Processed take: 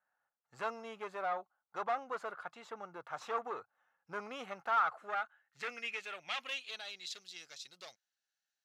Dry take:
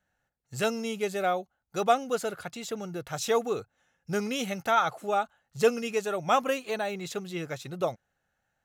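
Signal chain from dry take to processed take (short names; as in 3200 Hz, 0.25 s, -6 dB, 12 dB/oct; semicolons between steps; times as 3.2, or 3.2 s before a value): tube stage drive 26 dB, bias 0.5; band-pass sweep 1100 Hz -> 4800 Hz, 4.61–7.29; gain +3.5 dB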